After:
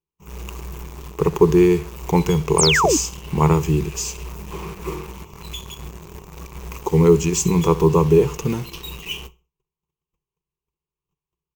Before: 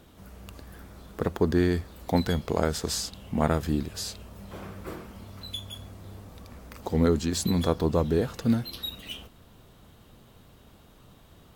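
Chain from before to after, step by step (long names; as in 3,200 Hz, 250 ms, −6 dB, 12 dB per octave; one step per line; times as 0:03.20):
noise gate −47 dBFS, range −42 dB
EQ curve with evenly spaced ripples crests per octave 0.74, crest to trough 18 dB
repeating echo 65 ms, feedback 31%, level −17.5 dB
in parallel at −5.5 dB: bit-depth reduction 6 bits, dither none
on the sum: sound drawn into the spectrogram fall, 0:02.58–0:02.97, 260–9,600 Hz −18 dBFS
level +1 dB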